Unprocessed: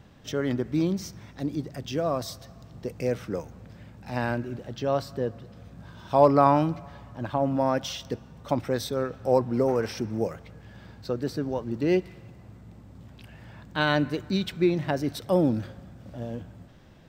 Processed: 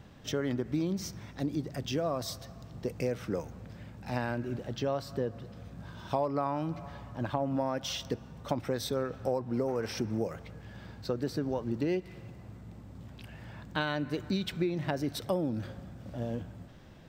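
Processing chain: compression 8:1, threshold -27 dBFS, peak gain reduction 15 dB

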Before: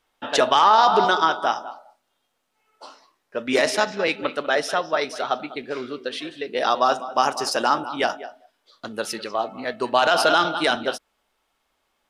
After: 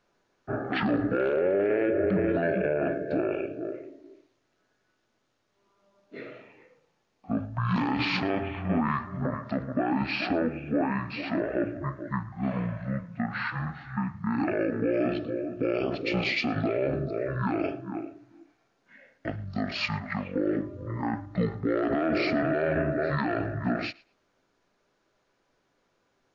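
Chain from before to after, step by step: wide varispeed 0.459×; peak limiter -17.5 dBFS, peak gain reduction 11.5 dB; thinning echo 113 ms, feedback 17%, level -23 dB

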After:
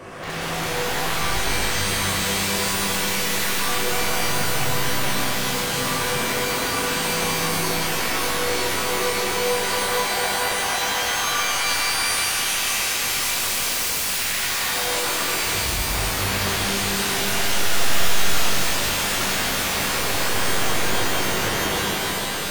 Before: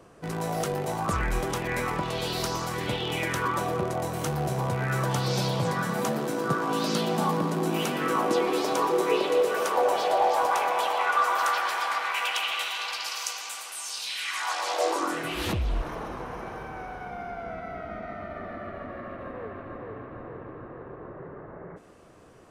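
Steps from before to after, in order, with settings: peaking EQ 2 kHz +9.5 dB 1.1 oct; peak limiter -22.5 dBFS, peak gain reduction 13 dB; compressor with a negative ratio -36 dBFS, ratio -1; wavefolder -36.5 dBFS; pitch-shifted reverb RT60 3.7 s, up +12 st, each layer -2 dB, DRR -9 dB; trim +5.5 dB

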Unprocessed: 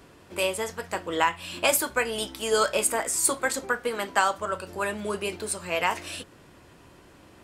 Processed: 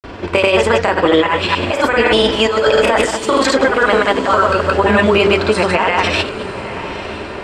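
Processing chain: chunks repeated in reverse 114 ms, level -10.5 dB; peaking EQ 170 Hz -5 dB 0.53 oct; band-stop 6.5 kHz, Q 24; de-hum 49.91 Hz, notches 10; compressor with a negative ratio -30 dBFS, ratio -1; granulator, pitch spread up and down by 0 st; distance through air 170 m; echo that smears into a reverb 926 ms, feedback 56%, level -14 dB; loudness maximiser +22 dB; trim -1 dB

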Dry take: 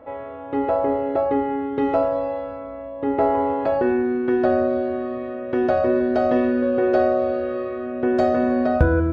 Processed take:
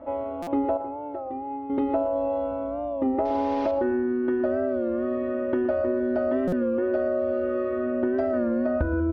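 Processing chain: 3.25–3.71 s: one-bit delta coder 32 kbps, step -25 dBFS; low-pass 3.6 kHz 12 dB/octave; treble shelf 2.1 kHz -8 dB; comb 3.3 ms, depth 97%; compression, threshold -22 dBFS, peak gain reduction 13.5 dB; 0.77–1.70 s: feedback comb 120 Hz, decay 0.15 s, harmonics odd, mix 80%; multi-tap echo 115/125 ms -19/-17.5 dB; buffer glitch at 0.42/6.48 s, samples 256, times 8; warped record 33 1/3 rpm, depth 100 cents

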